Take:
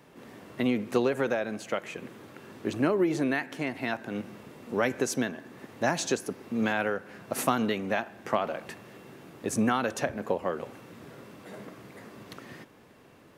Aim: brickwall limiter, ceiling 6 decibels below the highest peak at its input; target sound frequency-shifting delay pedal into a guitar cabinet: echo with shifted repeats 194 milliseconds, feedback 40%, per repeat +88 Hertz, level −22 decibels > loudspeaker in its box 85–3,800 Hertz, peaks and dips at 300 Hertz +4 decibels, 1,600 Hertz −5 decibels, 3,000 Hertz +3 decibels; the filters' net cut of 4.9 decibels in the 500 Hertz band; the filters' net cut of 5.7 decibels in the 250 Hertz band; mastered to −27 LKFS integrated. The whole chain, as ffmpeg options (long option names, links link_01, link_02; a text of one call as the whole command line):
ffmpeg -i in.wav -filter_complex "[0:a]equalizer=frequency=250:width_type=o:gain=-7.5,equalizer=frequency=500:width_type=o:gain=-4.5,alimiter=limit=-20dB:level=0:latency=1,asplit=4[link_01][link_02][link_03][link_04];[link_02]adelay=194,afreqshift=88,volume=-22dB[link_05];[link_03]adelay=388,afreqshift=176,volume=-30dB[link_06];[link_04]adelay=582,afreqshift=264,volume=-37.9dB[link_07];[link_01][link_05][link_06][link_07]amix=inputs=4:normalize=0,highpass=85,equalizer=frequency=300:width_type=q:width=4:gain=4,equalizer=frequency=1600:width_type=q:width=4:gain=-5,equalizer=frequency=3000:width_type=q:width=4:gain=3,lowpass=frequency=3800:width=0.5412,lowpass=frequency=3800:width=1.3066,volume=8.5dB" out.wav